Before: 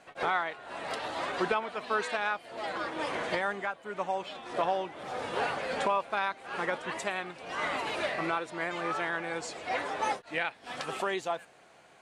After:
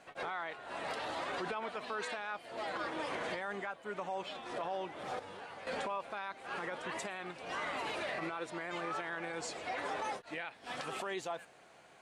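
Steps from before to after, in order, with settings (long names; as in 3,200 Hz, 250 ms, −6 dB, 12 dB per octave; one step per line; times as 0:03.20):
brickwall limiter −27.5 dBFS, peak gain reduction 11 dB
0:05.19–0:05.67: tuned comb filter 96 Hz, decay 0.54 s, harmonics all, mix 80%
level −2 dB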